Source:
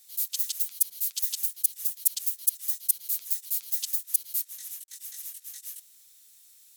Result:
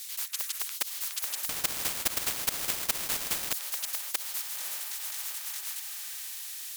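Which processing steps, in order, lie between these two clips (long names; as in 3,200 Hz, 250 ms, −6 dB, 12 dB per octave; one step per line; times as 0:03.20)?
wavefolder on the positive side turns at −17.5 dBFS
high-pass filter 1,200 Hz 12 dB per octave
feedback delay with all-pass diffusion 547 ms, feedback 53%, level −13.5 dB
0:01.49–0:03.53: bad sample-rate conversion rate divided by 8×, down none, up zero stuff
every bin compressed towards the loudest bin 4 to 1
level −12 dB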